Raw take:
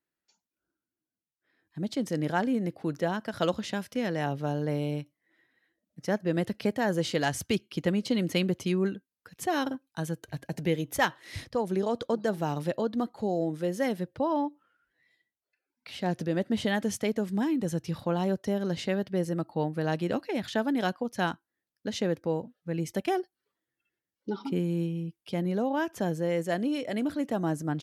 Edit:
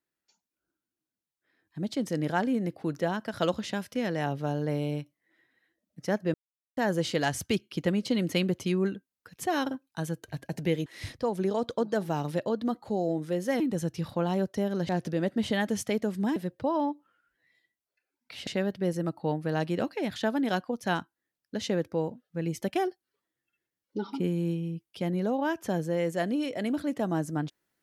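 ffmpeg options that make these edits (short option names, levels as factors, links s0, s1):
-filter_complex "[0:a]asplit=8[s0][s1][s2][s3][s4][s5][s6][s7];[s0]atrim=end=6.34,asetpts=PTS-STARTPTS,afade=t=out:st=6.336:d=0.004:c=hsin[s8];[s1]atrim=start=6.34:end=6.77,asetpts=PTS-STARTPTS,volume=0[s9];[s2]atrim=start=6.77:end=10.862,asetpts=PTS-STARTPTS,afade=t=in:d=0.004:c=hsin[s10];[s3]atrim=start=11.178:end=13.922[s11];[s4]atrim=start=17.498:end=18.792[s12];[s5]atrim=start=16.028:end=17.502[s13];[s6]atrim=start=13.918:end=16.032[s14];[s7]atrim=start=18.788[s15];[s8][s9][s10]concat=n=3:v=0:a=1[s16];[s16][s11]acrossfade=d=0.004:c1=hsin:c2=hsin[s17];[s17][s12]acrossfade=d=0.004:c1=hsin:c2=hsin[s18];[s18][s13]acrossfade=d=0.004:c1=hsin:c2=hsin[s19];[s19][s14]acrossfade=d=0.004:c1=hsin:c2=hsin[s20];[s20][s15]acrossfade=d=0.004:c1=hsin:c2=hsin"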